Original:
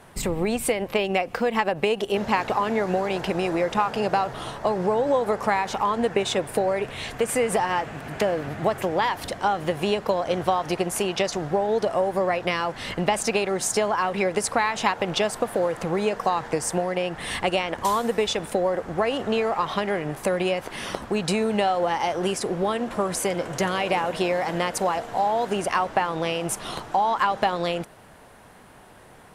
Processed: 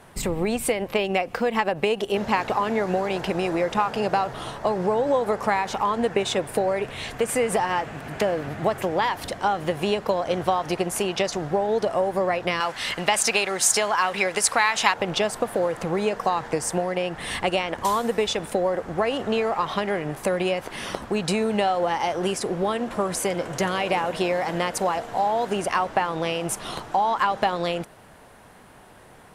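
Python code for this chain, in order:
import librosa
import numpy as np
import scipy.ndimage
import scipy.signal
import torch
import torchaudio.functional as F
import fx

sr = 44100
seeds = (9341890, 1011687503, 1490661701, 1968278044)

y = fx.tilt_shelf(x, sr, db=-7.0, hz=750.0, at=(12.6, 14.94))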